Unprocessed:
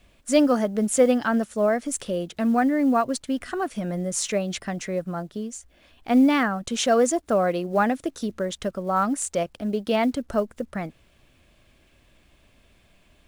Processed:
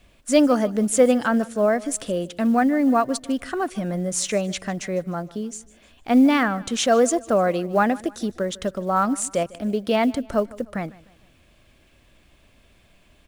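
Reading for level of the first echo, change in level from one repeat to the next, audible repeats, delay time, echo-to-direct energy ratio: -21.0 dB, -8.0 dB, 2, 0.152 s, -20.0 dB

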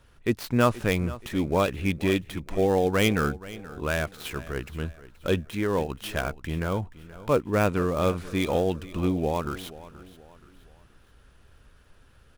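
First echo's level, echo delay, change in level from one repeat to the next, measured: -17.5 dB, 0.477 s, -8.0 dB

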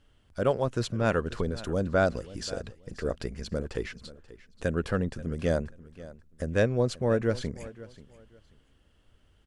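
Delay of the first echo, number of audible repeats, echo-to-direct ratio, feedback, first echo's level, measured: 0.534 s, 2, -18.0 dB, 23%, -18.0 dB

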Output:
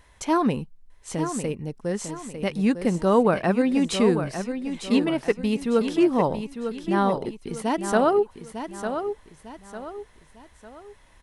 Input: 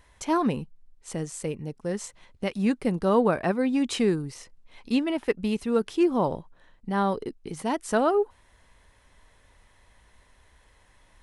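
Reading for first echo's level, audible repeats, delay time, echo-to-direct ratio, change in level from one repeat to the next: -8.5 dB, 3, 0.901 s, -8.0 dB, -8.5 dB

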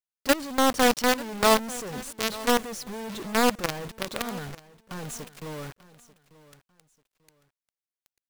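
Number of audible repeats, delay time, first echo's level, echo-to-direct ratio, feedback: 2, 0.891 s, -18.5 dB, -18.0 dB, 27%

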